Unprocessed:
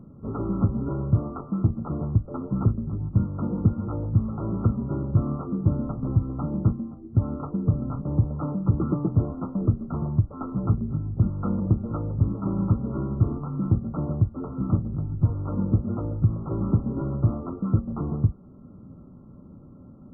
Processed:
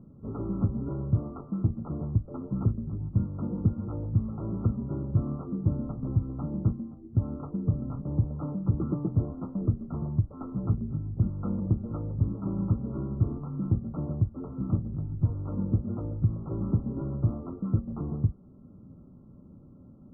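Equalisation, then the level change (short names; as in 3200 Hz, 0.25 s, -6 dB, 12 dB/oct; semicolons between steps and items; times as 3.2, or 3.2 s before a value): LPF 1100 Hz 6 dB/oct; air absorption 340 m; -4.0 dB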